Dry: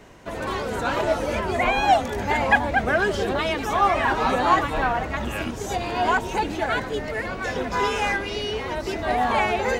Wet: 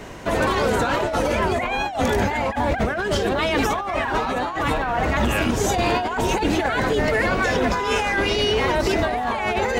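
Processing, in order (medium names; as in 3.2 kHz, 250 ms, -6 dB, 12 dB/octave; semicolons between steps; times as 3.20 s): compressor with a negative ratio -28 dBFS, ratio -1; peak limiter -18 dBFS, peak gain reduction 4.5 dB; trim +7 dB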